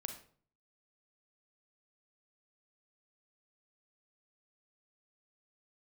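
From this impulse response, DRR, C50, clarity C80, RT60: 5.5 dB, 8.0 dB, 12.5 dB, 0.50 s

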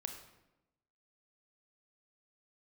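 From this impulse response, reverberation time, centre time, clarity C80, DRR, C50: 0.95 s, 23 ms, 9.5 dB, 4.5 dB, 6.5 dB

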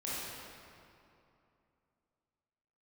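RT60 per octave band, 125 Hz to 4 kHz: 3.0, 3.0, 2.7, 2.7, 2.2, 1.7 s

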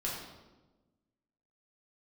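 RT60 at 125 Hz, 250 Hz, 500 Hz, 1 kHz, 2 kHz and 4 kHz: 1.6, 1.6, 1.3, 1.0, 0.85, 0.80 s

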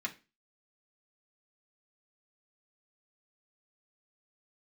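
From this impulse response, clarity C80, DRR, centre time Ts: 22.5 dB, -2.0 dB, 8 ms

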